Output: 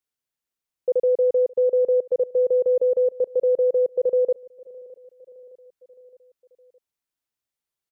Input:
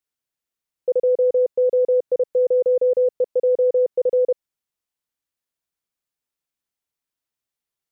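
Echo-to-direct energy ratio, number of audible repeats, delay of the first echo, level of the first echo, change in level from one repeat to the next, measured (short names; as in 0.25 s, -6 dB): -20.5 dB, 3, 0.614 s, -22.0 dB, -5.0 dB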